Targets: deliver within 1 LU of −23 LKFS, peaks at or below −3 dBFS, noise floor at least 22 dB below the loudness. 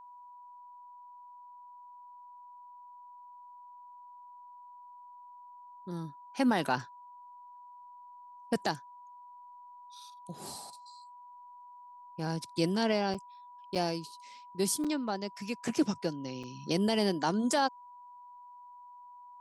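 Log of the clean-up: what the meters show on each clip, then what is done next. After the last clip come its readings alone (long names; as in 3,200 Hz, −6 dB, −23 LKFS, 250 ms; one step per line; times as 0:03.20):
number of dropouts 4; longest dropout 5.9 ms; interfering tone 980 Hz; level of the tone −49 dBFS; integrated loudness −32.5 LKFS; sample peak −14.5 dBFS; target loudness −23.0 LKFS
→ repair the gap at 0:13.14/0:13.75/0:14.84/0:16.43, 5.9 ms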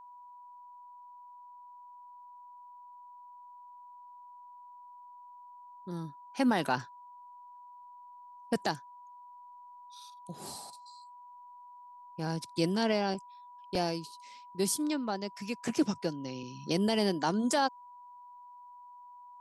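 number of dropouts 0; interfering tone 980 Hz; level of the tone −49 dBFS
→ notch filter 980 Hz, Q 30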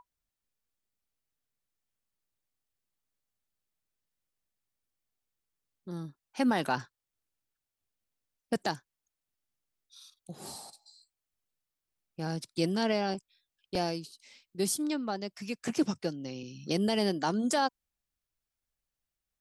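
interfering tone none found; integrated loudness −32.5 LKFS; sample peak −14.5 dBFS; target loudness −23.0 LKFS
→ level +9.5 dB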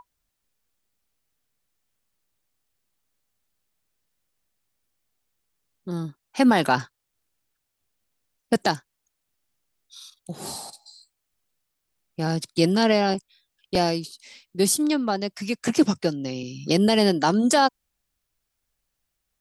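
integrated loudness −23.0 LKFS; sample peak −5.0 dBFS; background noise floor −79 dBFS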